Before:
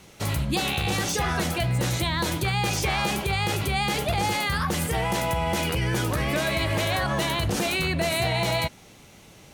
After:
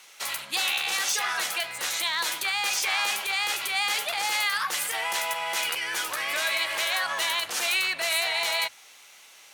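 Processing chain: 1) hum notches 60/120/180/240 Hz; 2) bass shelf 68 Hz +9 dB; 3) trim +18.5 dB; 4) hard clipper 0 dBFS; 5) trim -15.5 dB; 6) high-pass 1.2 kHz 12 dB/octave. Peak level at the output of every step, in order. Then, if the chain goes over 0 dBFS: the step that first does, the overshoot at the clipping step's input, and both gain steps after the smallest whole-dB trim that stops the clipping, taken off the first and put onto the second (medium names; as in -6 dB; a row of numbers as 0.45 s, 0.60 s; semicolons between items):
-14.0 dBFS, -13.5 dBFS, +5.0 dBFS, 0.0 dBFS, -15.5 dBFS, -13.0 dBFS; step 3, 5.0 dB; step 3 +13.5 dB, step 5 -10.5 dB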